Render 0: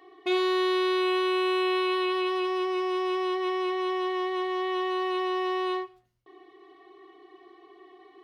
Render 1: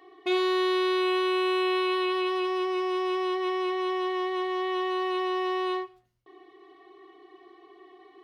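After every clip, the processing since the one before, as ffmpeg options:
ffmpeg -i in.wav -af anull out.wav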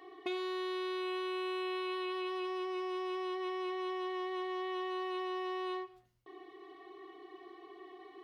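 ffmpeg -i in.wav -af "acompressor=threshold=-37dB:ratio=4" out.wav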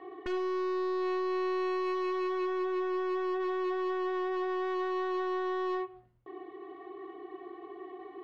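ffmpeg -i in.wav -af "aresample=11025,aresample=44100,aeval=exprs='0.0178*(abs(mod(val(0)/0.0178+3,4)-2)-1)':channel_layout=same,adynamicsmooth=sensitivity=4:basefreq=1700,volume=8dB" out.wav

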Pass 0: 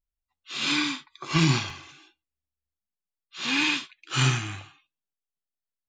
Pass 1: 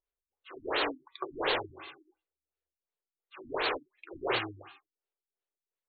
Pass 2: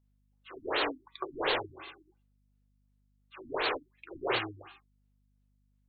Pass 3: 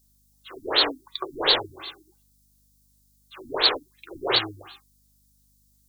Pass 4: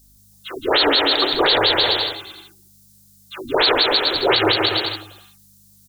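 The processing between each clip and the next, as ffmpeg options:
ffmpeg -i in.wav -af "aeval=exprs='(mod(13.3*val(0)+1,2)-1)/13.3':channel_layout=same,lowshelf=frequency=290:width_type=q:width=3:gain=-12,afftfilt=real='re*lt(b*sr/1024,300*pow(4600/300,0.5+0.5*sin(2*PI*2.8*pts/sr)))':imag='im*lt(b*sr/1024,300*pow(4600/300,0.5+0.5*sin(2*PI*2.8*pts/sr)))':win_size=1024:overlap=0.75,volume=2dB" out.wav
ffmpeg -i in.wav -af "aeval=exprs='val(0)+0.000316*(sin(2*PI*50*n/s)+sin(2*PI*2*50*n/s)/2+sin(2*PI*3*50*n/s)/3+sin(2*PI*4*50*n/s)/4+sin(2*PI*5*50*n/s)/5)':channel_layout=same" out.wav
ffmpeg -i in.wav -af "aexciter=amount=10.6:drive=3.5:freq=3800,volume=5dB" out.wav
ffmpeg -i in.wav -filter_complex "[0:a]bandreject=frequency=1100:width=11,asplit=2[link_01][link_02];[link_02]aecho=0:1:170|306|414.8|501.8|571.5:0.631|0.398|0.251|0.158|0.1[link_03];[link_01][link_03]amix=inputs=2:normalize=0,alimiter=level_in=16.5dB:limit=-1dB:release=50:level=0:latency=1,volume=-5.5dB" out.wav

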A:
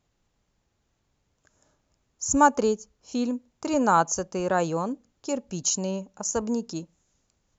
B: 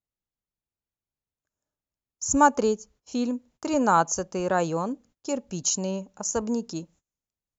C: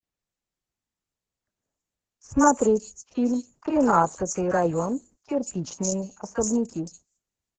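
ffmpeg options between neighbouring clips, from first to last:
ffmpeg -i in.wav -af "agate=range=-23dB:threshold=-54dB:ratio=16:detection=peak" out.wav
ffmpeg -i in.wav -filter_complex "[0:a]equalizer=frequency=3700:width_type=o:width=0.91:gain=-13.5,acrossover=split=1100|4100[link_01][link_02][link_03];[link_01]adelay=30[link_04];[link_03]adelay=180[link_05];[link_04][link_02][link_05]amix=inputs=3:normalize=0,volume=3.5dB" -ar 48000 -c:a libopus -b:a 10k out.opus

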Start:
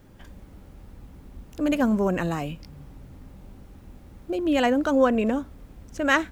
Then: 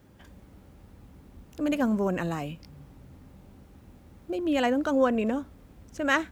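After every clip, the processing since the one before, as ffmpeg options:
ffmpeg -i in.wav -af "highpass=56,volume=-3.5dB" out.wav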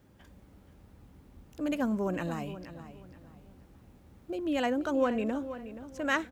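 ffmpeg -i in.wav -filter_complex "[0:a]asplit=2[link_01][link_02];[link_02]adelay=477,lowpass=frequency=4600:poles=1,volume=-12.5dB,asplit=2[link_03][link_04];[link_04]adelay=477,lowpass=frequency=4600:poles=1,volume=0.3,asplit=2[link_05][link_06];[link_06]adelay=477,lowpass=frequency=4600:poles=1,volume=0.3[link_07];[link_01][link_03][link_05][link_07]amix=inputs=4:normalize=0,volume=-4.5dB" out.wav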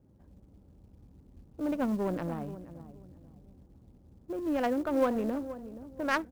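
ffmpeg -i in.wav -af "adynamicsmooth=sensitivity=1.5:basefreq=550,equalizer=frequency=920:width_type=o:width=1.8:gain=2,acrusher=bits=7:mode=log:mix=0:aa=0.000001" out.wav

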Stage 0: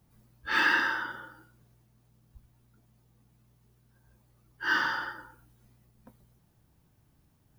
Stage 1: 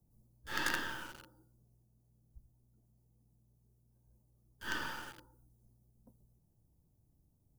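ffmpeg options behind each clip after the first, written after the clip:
ffmpeg -i in.wav -filter_complex "[0:a]lowshelf=frequency=74:gain=8,acrossover=split=100|850|5200[link_01][link_02][link_03][link_04];[link_03]acrusher=bits=4:dc=4:mix=0:aa=0.000001[link_05];[link_01][link_02][link_05][link_04]amix=inputs=4:normalize=0,volume=-8.5dB" out.wav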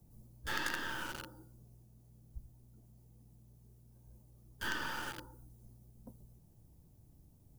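ffmpeg -i in.wav -af "acompressor=threshold=-45dB:ratio=4,volume=10dB" out.wav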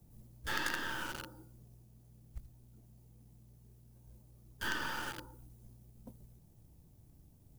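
ffmpeg -i in.wav -af "acrusher=bits=6:mode=log:mix=0:aa=0.000001,volume=1dB" out.wav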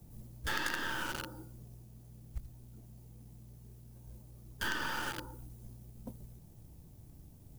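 ffmpeg -i in.wav -af "acompressor=threshold=-41dB:ratio=2,volume=6.5dB" out.wav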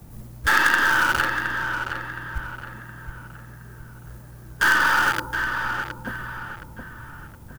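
ffmpeg -i in.wav -filter_complex "[0:a]equalizer=frequency=1400:width_type=o:width=1.5:gain=11,asplit=2[link_01][link_02];[link_02]aeval=exprs='(mod(10.6*val(0)+1,2)-1)/10.6':channel_layout=same,volume=-11dB[link_03];[link_01][link_03]amix=inputs=2:normalize=0,asplit=2[link_04][link_05];[link_05]adelay=718,lowpass=frequency=3200:poles=1,volume=-6.5dB,asplit=2[link_06][link_07];[link_07]adelay=718,lowpass=frequency=3200:poles=1,volume=0.42,asplit=2[link_08][link_09];[link_09]adelay=718,lowpass=frequency=3200:poles=1,volume=0.42,asplit=2[link_10][link_11];[link_11]adelay=718,lowpass=frequency=3200:poles=1,volume=0.42,asplit=2[link_12][link_13];[link_13]adelay=718,lowpass=frequency=3200:poles=1,volume=0.42[link_14];[link_04][link_06][link_08][link_10][link_12][link_14]amix=inputs=6:normalize=0,volume=8dB" out.wav

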